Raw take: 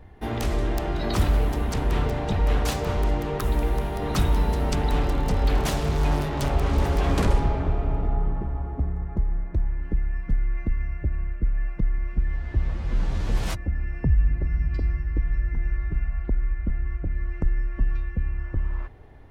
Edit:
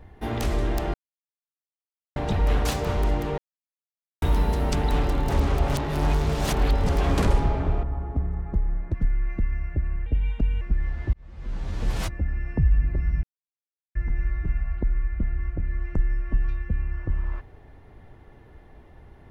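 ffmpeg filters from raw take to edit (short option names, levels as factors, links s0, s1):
-filter_complex "[0:a]asplit=14[s0][s1][s2][s3][s4][s5][s6][s7][s8][s9][s10][s11][s12][s13];[s0]atrim=end=0.94,asetpts=PTS-STARTPTS,afade=t=out:st=0.936:d=0.004:c=hsin[s14];[s1]atrim=start=0.94:end=2.16,asetpts=PTS-STARTPTS,volume=0[s15];[s2]atrim=start=2.16:end=3.38,asetpts=PTS-STARTPTS,afade=t=in:d=0.004:c=hsin,afade=t=out:st=1.216:d=0.004:c=hsin[s16];[s3]atrim=start=3.38:end=4.22,asetpts=PTS-STARTPTS,volume=0[s17];[s4]atrim=start=4.22:end=5.292,asetpts=PTS-STARTPTS,afade=t=in:d=0.004:c=hsin[s18];[s5]atrim=start=5.288:end=6.892,asetpts=PTS-STARTPTS,areverse[s19];[s6]atrim=start=6.888:end=7.832[s20];[s7]atrim=start=8.458:end=9.572[s21];[s8]atrim=start=10.218:end=11.344[s22];[s9]atrim=start=11.34:end=12.08,asetpts=PTS-STARTPTS,asetrate=59094,aresample=44100[s23];[s10]atrim=start=12.076:end=12.6,asetpts=PTS-STARTPTS,afade=t=out:st=0.52:d=0.004:c=hsin[s24];[s11]atrim=start=12.6:end=14.7,asetpts=PTS-STARTPTS,afade=t=in:d=0.91,afade=t=out:st=2.096:d=0.004:c=hsin[s25];[s12]atrim=start=14.7:end=15.42,asetpts=PTS-STARTPTS,volume=0[s26];[s13]atrim=start=15.42,asetpts=PTS-STARTPTS,afade=t=in:d=0.004:c=hsin[s27];[s14][s15][s16][s17][s18]concat=n=5:v=0:a=1[s28];[s28][s19]acrossfade=d=0.004:c1=hsin:c2=hsin[s29];[s29][s20]acrossfade=d=0.004:c1=hsin:c2=hsin[s30];[s30][s21]acrossfade=d=0.004:c1=hsin:c2=hsin[s31];[s31][s22]acrossfade=d=0.004:c1=hsin:c2=hsin[s32];[s32][s23]acrossfade=d=0.004:c1=hsin:c2=hsin[s33];[s24][s25][s26][s27]concat=n=4:v=0:a=1[s34];[s33][s34]acrossfade=d=0.004:c1=hsin:c2=hsin"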